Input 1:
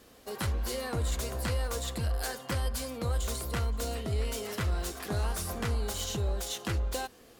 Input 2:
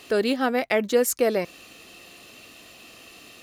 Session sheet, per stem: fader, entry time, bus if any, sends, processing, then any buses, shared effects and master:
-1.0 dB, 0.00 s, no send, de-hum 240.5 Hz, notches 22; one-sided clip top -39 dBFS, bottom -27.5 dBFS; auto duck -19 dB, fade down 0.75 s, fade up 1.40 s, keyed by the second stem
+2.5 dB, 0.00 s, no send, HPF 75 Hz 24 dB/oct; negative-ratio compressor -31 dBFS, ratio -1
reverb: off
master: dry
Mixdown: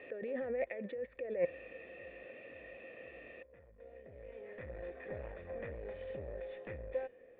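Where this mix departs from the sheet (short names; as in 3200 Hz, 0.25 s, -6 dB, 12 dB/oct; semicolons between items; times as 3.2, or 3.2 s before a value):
stem 1 -1.0 dB -> +6.0 dB; master: extra vocal tract filter e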